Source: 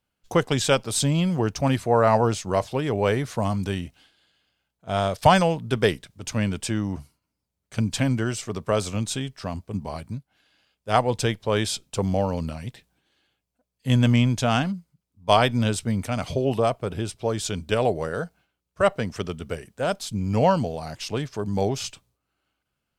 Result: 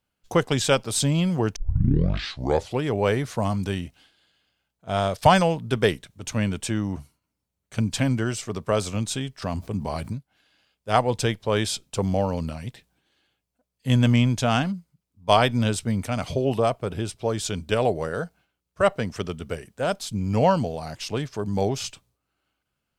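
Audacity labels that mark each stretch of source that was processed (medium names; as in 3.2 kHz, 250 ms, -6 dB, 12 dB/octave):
1.560000	1.560000	tape start 1.25 s
5.760000	7.870000	band-stop 4.9 kHz
9.420000	10.130000	level flattener amount 50%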